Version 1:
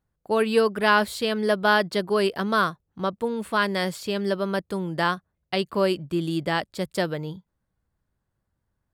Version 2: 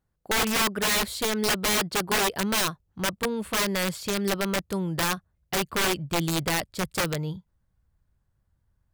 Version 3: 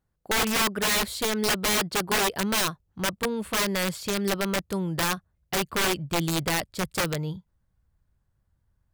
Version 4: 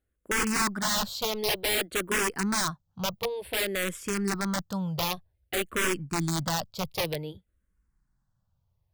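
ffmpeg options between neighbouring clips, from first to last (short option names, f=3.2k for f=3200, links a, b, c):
-af "asubboost=boost=2.5:cutoff=150,aeval=exprs='(mod(8.41*val(0)+1,2)-1)/8.41':c=same"
-af anull
-filter_complex "[0:a]asplit=2[a][b];[b]afreqshift=-0.54[c];[a][c]amix=inputs=2:normalize=1"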